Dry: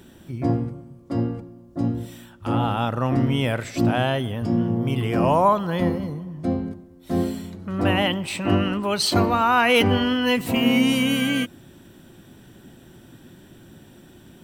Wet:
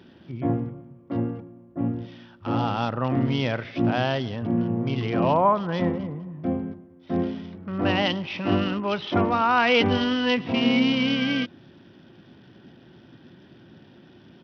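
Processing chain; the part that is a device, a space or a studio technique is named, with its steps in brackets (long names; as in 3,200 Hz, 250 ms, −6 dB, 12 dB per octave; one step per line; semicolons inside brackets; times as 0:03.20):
Bluetooth headset (high-pass filter 100 Hz 12 dB per octave; downsampling to 8,000 Hz; level −2 dB; SBC 64 kbit/s 44,100 Hz)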